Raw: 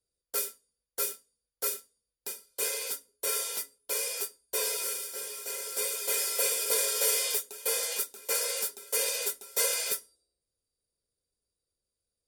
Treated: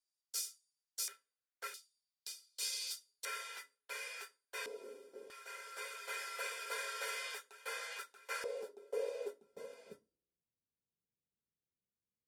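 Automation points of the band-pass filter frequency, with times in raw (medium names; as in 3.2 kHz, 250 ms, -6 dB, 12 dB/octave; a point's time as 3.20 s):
band-pass filter, Q 1.9
5.6 kHz
from 1.08 s 1.7 kHz
from 1.74 s 4.6 kHz
from 3.25 s 1.7 kHz
from 4.66 s 300 Hz
from 5.30 s 1.5 kHz
from 8.44 s 450 Hz
from 9.41 s 180 Hz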